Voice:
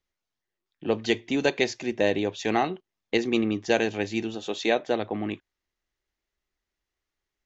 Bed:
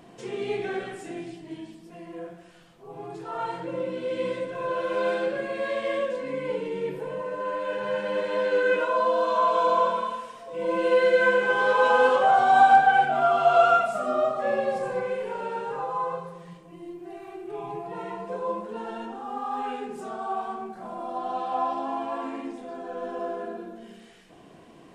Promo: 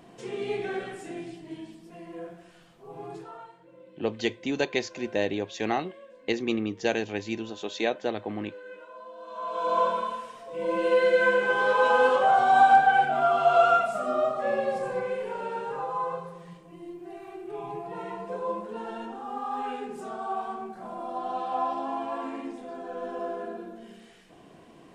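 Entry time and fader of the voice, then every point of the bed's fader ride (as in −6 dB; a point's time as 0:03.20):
3.15 s, −3.5 dB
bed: 0:03.17 −1.5 dB
0:03.55 −21.5 dB
0:09.16 −21.5 dB
0:09.79 −1.5 dB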